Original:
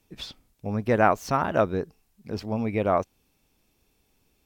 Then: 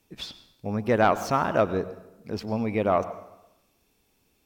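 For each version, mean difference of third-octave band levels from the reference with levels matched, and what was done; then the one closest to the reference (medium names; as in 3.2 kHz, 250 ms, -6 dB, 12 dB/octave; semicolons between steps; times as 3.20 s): 2.5 dB: bass shelf 87 Hz -7 dB; in parallel at -9 dB: sine folder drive 6 dB, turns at -5 dBFS; on the sum: plate-style reverb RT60 0.92 s, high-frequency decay 0.75×, pre-delay 85 ms, DRR 14 dB; trim -5.5 dB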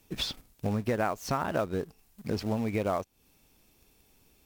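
7.0 dB: treble shelf 8.1 kHz +4.5 dB; in parallel at -6.5 dB: companded quantiser 4-bit; on the sum: compression 5:1, threshold -31 dBFS, peak gain reduction 18 dB; trim +3.5 dB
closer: first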